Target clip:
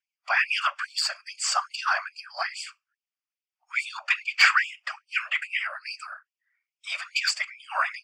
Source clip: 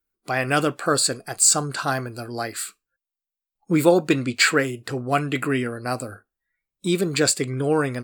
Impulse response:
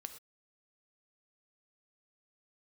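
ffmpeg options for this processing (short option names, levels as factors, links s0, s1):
-filter_complex "[0:a]acrossover=split=1000[s0][s1];[s1]aeval=exprs='0.708*sin(PI/2*2.82*val(0)/0.708)':c=same[s2];[s0][s2]amix=inputs=2:normalize=0,highpass=180,equalizer=f=240:t=q:w=4:g=-8,equalizer=f=430:t=q:w=4:g=7,equalizer=f=1200:t=q:w=4:g=5,equalizer=f=4700:t=q:w=4:g=7,lowpass=f=4900:w=0.5412,lowpass=f=4900:w=1.3066,aexciter=amount=1:drive=1.3:freq=2100,afftfilt=real='hypot(re,im)*cos(2*PI*random(0))':imag='hypot(re,im)*sin(2*PI*random(1))':win_size=512:overlap=0.75,afftfilt=real='re*gte(b*sr/1024,550*pow(2300/550,0.5+0.5*sin(2*PI*2.4*pts/sr)))':imag='im*gte(b*sr/1024,550*pow(2300/550,0.5+0.5*sin(2*PI*2.4*pts/sr)))':win_size=1024:overlap=0.75,volume=0.668"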